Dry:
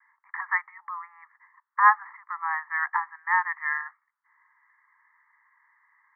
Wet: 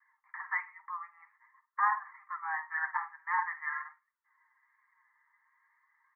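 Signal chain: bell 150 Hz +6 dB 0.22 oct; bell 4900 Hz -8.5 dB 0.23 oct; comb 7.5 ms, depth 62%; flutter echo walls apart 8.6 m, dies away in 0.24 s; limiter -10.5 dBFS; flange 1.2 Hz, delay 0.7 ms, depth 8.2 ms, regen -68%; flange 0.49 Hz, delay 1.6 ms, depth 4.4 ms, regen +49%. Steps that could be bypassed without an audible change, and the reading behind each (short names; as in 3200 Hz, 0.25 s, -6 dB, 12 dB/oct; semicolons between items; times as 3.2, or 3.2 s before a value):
bell 150 Hz: input band starts at 760 Hz; bell 4900 Hz: input band ends at 2300 Hz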